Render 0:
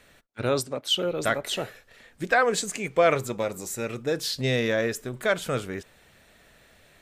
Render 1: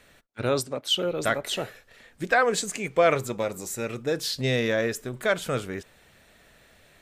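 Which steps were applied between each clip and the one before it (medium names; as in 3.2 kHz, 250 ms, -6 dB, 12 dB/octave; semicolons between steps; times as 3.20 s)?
no audible change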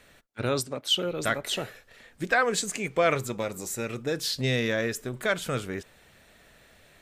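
dynamic bell 610 Hz, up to -4 dB, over -32 dBFS, Q 0.79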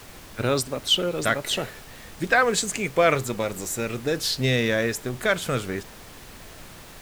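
added noise pink -48 dBFS; trim +4 dB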